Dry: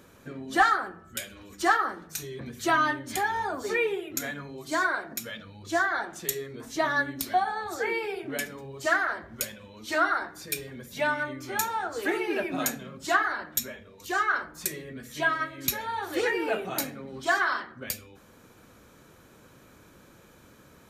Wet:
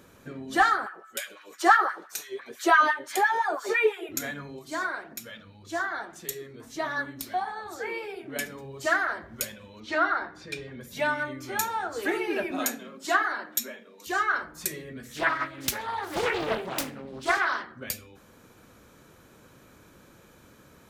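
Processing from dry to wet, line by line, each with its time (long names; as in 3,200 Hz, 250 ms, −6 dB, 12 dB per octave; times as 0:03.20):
0:00.86–0:04.09: auto-filter high-pass sine 5.9 Hz 390–1,600 Hz
0:04.59–0:08.36: flanger 1.7 Hz, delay 0.7 ms, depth 9.5 ms, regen +87%
0:09.80–0:10.81: low-pass filter 4,000 Hz
0:12.51–0:14.07: Butterworth high-pass 200 Hz
0:15.05–0:17.65: highs frequency-modulated by the lows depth 0.76 ms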